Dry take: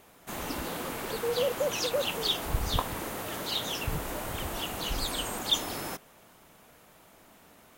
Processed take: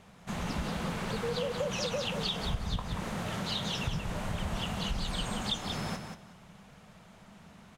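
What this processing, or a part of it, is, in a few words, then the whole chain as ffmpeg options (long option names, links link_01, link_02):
jukebox: -af "lowpass=6500,lowshelf=frequency=240:width_type=q:width=3:gain=6,acompressor=threshold=-30dB:ratio=6,aecho=1:1:182|364|546:0.447|0.0759|0.0129"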